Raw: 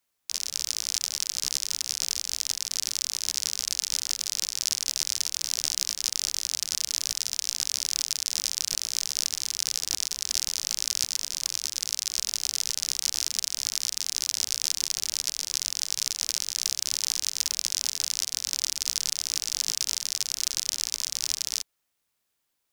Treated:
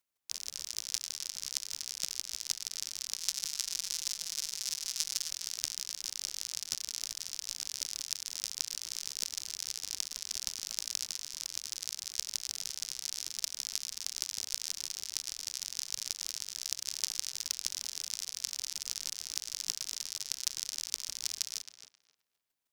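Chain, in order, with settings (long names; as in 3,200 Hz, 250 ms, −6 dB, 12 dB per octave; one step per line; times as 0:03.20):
0:03.18–0:05.31: comb filter 5.9 ms, depth 87%
square-wave tremolo 6.4 Hz, depth 60%, duty 10%
tape delay 266 ms, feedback 27%, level −7.5 dB, low-pass 2,600 Hz
level −3 dB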